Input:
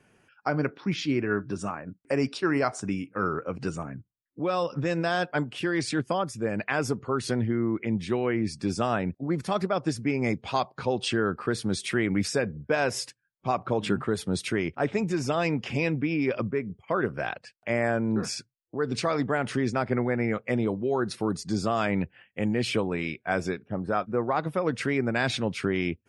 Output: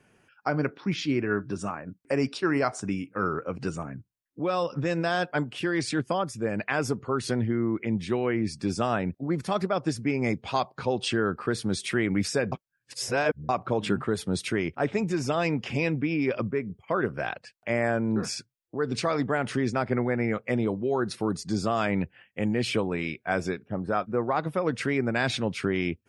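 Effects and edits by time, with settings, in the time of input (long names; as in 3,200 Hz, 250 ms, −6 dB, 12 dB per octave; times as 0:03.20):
0:12.52–0:13.49: reverse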